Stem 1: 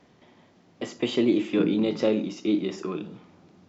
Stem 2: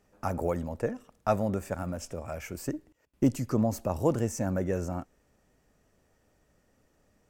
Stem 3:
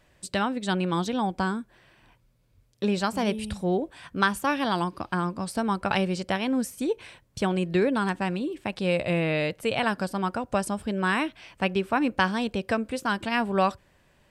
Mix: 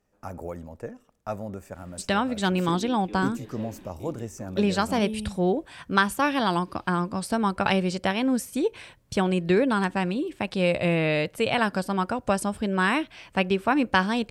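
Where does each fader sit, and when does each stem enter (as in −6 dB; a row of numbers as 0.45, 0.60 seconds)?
−18.5, −6.0, +2.0 decibels; 1.55, 0.00, 1.75 seconds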